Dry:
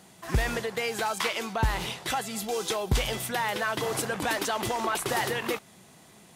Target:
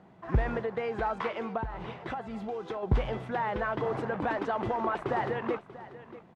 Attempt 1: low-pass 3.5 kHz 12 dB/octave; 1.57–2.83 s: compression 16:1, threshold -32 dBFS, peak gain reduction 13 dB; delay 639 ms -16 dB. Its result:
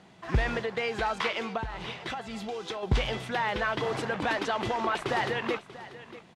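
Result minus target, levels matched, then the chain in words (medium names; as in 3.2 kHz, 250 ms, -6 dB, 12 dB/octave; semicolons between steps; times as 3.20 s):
4 kHz band +12.0 dB
low-pass 1.3 kHz 12 dB/octave; 1.57–2.83 s: compression 16:1, threshold -32 dBFS, peak gain reduction 13 dB; delay 639 ms -16 dB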